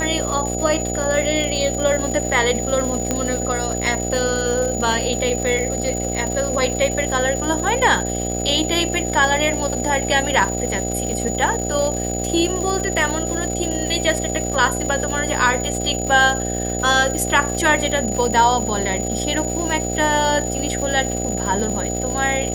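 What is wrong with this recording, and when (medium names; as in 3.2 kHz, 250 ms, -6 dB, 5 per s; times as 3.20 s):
buzz 60 Hz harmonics 13 -25 dBFS
crackle 360 per s -26 dBFS
whine 6.9 kHz -26 dBFS
3.11 s: pop -6 dBFS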